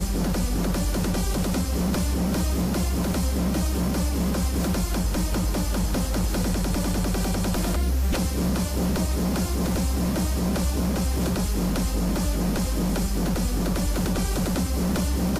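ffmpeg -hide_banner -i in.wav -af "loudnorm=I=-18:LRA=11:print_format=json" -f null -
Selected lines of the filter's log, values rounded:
"input_i" : "-25.2",
"input_tp" : "-14.8",
"input_lra" : "0.4",
"input_thresh" : "-35.2",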